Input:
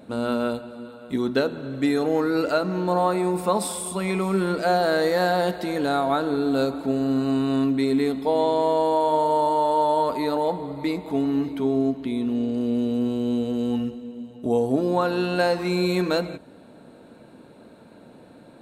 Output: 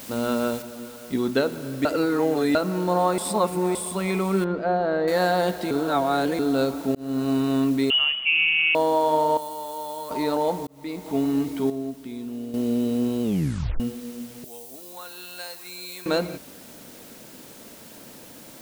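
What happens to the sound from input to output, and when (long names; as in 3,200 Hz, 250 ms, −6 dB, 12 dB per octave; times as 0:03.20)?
0:00.62: noise floor change −41 dB −47 dB
0:01.85–0:02.55: reverse
0:03.18–0:03.75: reverse
0:04.44–0:05.08: head-to-tape spacing loss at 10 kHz 38 dB
0:05.71–0:06.39: reverse
0:06.95–0:07.37: fade in equal-power
0:07.90–0:08.75: voice inversion scrambler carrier 3,200 Hz
0:09.37–0:10.11: first-order pre-emphasis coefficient 0.8
0:10.67–0:11.18: fade in
0:11.70–0:12.54: clip gain −8.5 dB
0:13.23: tape stop 0.57 s
0:14.44–0:16.06: first-order pre-emphasis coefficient 0.97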